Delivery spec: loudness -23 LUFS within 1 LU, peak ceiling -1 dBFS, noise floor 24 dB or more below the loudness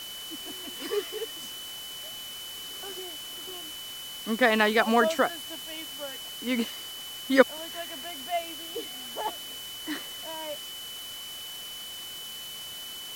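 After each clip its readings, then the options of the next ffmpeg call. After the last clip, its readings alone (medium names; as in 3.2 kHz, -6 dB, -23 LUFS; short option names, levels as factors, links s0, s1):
steady tone 3 kHz; tone level -39 dBFS; noise floor -40 dBFS; noise floor target -55 dBFS; loudness -30.5 LUFS; peak level -3.5 dBFS; loudness target -23.0 LUFS
-> -af "bandreject=f=3000:w=30"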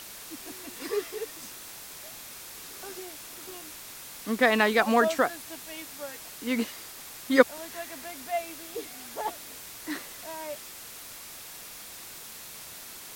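steady tone not found; noise floor -44 dBFS; noise floor target -56 dBFS
-> -af "afftdn=nr=12:nf=-44"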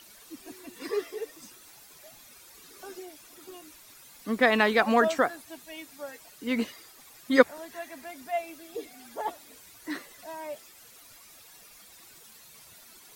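noise floor -53 dBFS; loudness -28.5 LUFS; peak level -3.5 dBFS; loudness target -23.0 LUFS
-> -af "volume=1.88,alimiter=limit=0.891:level=0:latency=1"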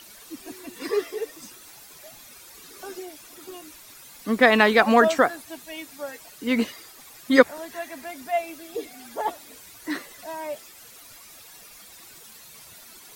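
loudness -23.0 LUFS; peak level -1.0 dBFS; noise floor -47 dBFS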